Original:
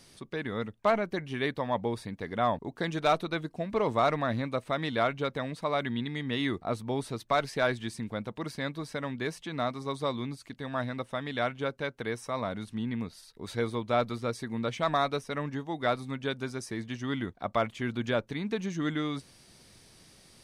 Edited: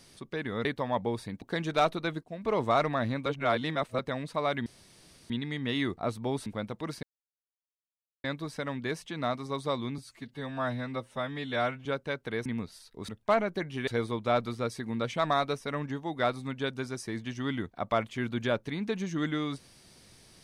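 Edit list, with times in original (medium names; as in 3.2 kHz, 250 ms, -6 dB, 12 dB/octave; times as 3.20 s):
0.65–1.44 s: move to 13.51 s
2.21–2.70 s: delete
3.51–3.83 s: fade in linear, from -13.5 dB
4.54–5.27 s: reverse
5.94 s: insert room tone 0.64 s
7.10–8.03 s: delete
8.60 s: insert silence 1.21 s
10.34–11.59 s: stretch 1.5×
12.19–12.88 s: delete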